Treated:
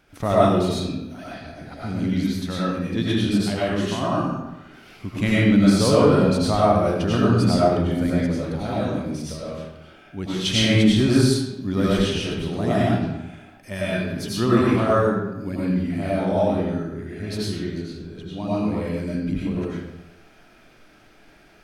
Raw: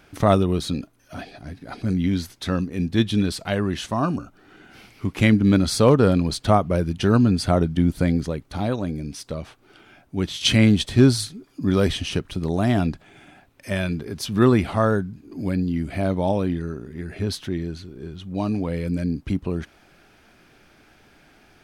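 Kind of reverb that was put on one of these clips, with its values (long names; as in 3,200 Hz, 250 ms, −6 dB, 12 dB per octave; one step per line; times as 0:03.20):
comb and all-pass reverb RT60 0.97 s, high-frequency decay 0.75×, pre-delay 60 ms, DRR −8 dB
level −7 dB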